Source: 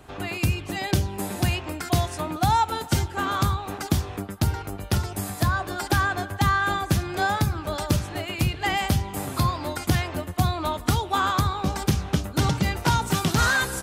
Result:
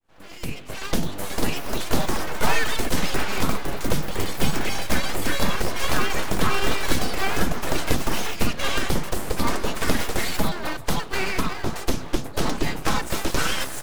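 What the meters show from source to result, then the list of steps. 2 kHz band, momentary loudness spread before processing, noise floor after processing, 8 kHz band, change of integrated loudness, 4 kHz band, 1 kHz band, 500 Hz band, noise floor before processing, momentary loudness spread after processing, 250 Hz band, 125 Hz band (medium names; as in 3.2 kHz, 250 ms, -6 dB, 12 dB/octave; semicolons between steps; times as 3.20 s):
0.0 dB, 6 LU, -35 dBFS, +2.0 dB, -1.0 dB, +2.0 dB, -3.5 dB, +3.0 dB, -38 dBFS, 5 LU, 0.0 dB, -6.5 dB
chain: fade-in on the opening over 0.91 s; in parallel at -11.5 dB: sample-and-hold 29×; on the sum: flange 0.47 Hz, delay 0.3 ms, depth 9.1 ms, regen -52%; full-wave rectifier; ever faster or slower copies 722 ms, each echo +6 st, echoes 3; trim +4 dB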